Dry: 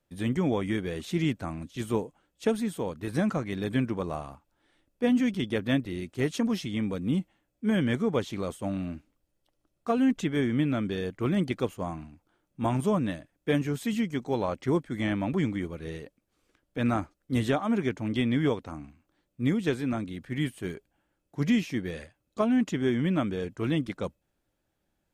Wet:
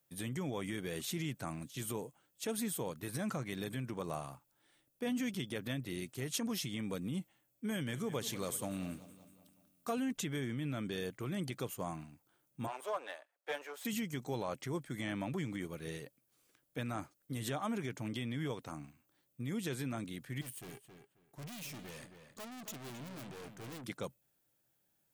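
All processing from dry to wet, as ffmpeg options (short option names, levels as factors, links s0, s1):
-filter_complex "[0:a]asettb=1/sr,asplit=3[s0][s1][s2];[s0]atrim=end=7.694[s3];[s1]atrim=start=7.69:end=9.96,asetpts=PTS-STARTPTS,afade=t=in:d=0.004:c=qsin,afade=t=out:st=2.266:d=0.004:c=qsin,highshelf=f=4100:g=5,aecho=1:1:188|376|564|752|940:0.119|0.0689|0.04|0.0232|0.0134,atrim=end_sample=100107[s4];[s2]atrim=start=9.956[s5];[s3][s4]acrossfade=d=0.004:c1=hsin:c2=qsin[s6];[s6][s5]acrossfade=d=0.004:c1=qsin:c2=hsin,asettb=1/sr,asplit=3[s7][s8][s9];[s7]atrim=end=12.674[s10];[s8]atrim=start=12.67:end=13.85,asetpts=PTS-STARTPTS,afade=t=in:d=0.004:c=qsin,afade=t=out:st=1.176:d=0.004:c=qsin,aeval=exprs='if(lt(val(0),0),0.447*val(0),val(0))':c=same,highpass=f=500:w=0.5412,highpass=f=500:w=1.3066,asplit=2[s11][s12];[s12]highpass=f=720:p=1,volume=3.16,asoftclip=type=tanh:threshold=0.112[s13];[s11][s13]amix=inputs=2:normalize=0,lowpass=f=1100:p=1,volume=0.501[s14];[s9]atrim=start=13.846[s15];[s10][s14]acrossfade=d=0.004:c1=hsin:c2=qsin[s16];[s16][s15]acrossfade=d=0.004:c1=qsin:c2=hsin,asettb=1/sr,asplit=3[s17][s18][s19];[s17]atrim=end=20.414[s20];[s18]atrim=start=20.41:end=23.84,asetpts=PTS-STARTPTS,afade=t=in:d=0.004:c=qsin,afade=t=out:st=3.426:d=0.004:c=qsin,aeval=exprs='(tanh(112*val(0)+0.75)-tanh(0.75))/112':c=same,asplit=2[s21][s22];[s22]adelay=269,lowpass=f=3500:p=1,volume=0.398,asplit=2[s23][s24];[s24]adelay=269,lowpass=f=3500:p=1,volume=0.2,asplit=2[s25][s26];[s26]adelay=269,lowpass=f=3500:p=1,volume=0.2[s27];[s21][s23][s25][s27]amix=inputs=4:normalize=0,atrim=end_sample=151263[s28];[s19]atrim=start=23.836[s29];[s20][s28]acrossfade=d=0.004:c1=hsin:c2=qsin[s30];[s30][s29]acrossfade=d=0.004:c1=qsin:c2=hsin,equalizer=f=130:t=o:w=0.65:g=12.5,alimiter=limit=0.0891:level=0:latency=1:release=82,aemphasis=mode=production:type=bsi,volume=0.596"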